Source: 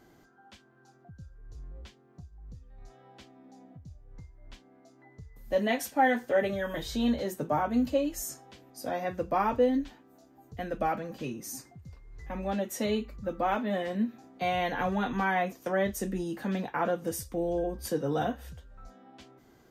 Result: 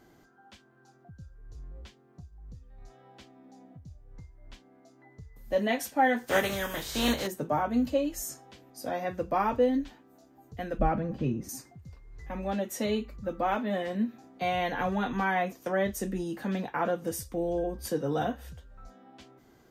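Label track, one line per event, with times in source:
6.260000	7.260000	spectral contrast lowered exponent 0.55
10.790000	11.490000	RIAA curve playback

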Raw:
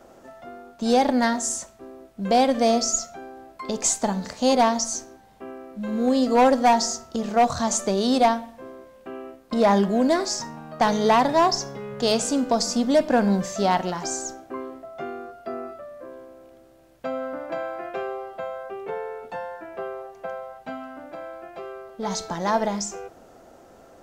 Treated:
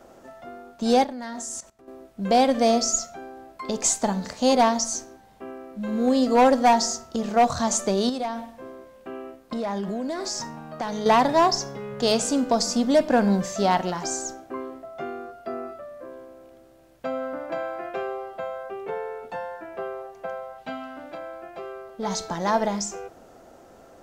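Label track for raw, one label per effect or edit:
1.040000	1.880000	level quantiser steps of 17 dB
8.090000	11.060000	compressor 10:1, threshold -25 dBFS
20.580000	21.180000	bell 3500 Hz +6.5 dB 1.3 oct

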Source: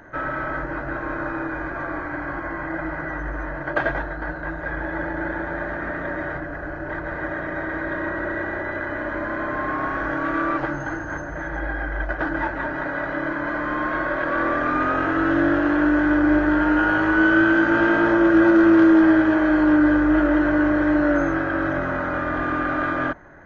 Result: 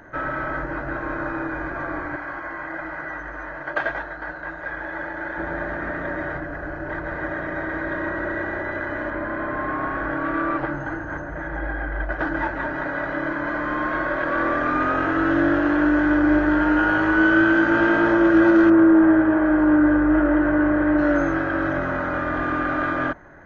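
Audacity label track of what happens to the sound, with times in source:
2.160000	5.380000	low shelf 390 Hz -12 dB
9.100000	12.120000	air absorption 170 m
18.690000	20.970000	LPF 1500 Hz -> 2300 Hz

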